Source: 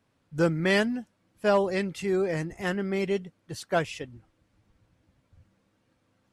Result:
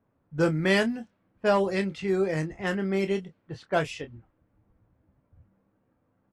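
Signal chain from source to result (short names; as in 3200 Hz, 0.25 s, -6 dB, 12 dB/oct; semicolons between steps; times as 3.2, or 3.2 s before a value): low-pass opened by the level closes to 1200 Hz, open at -23.5 dBFS; doubler 26 ms -9 dB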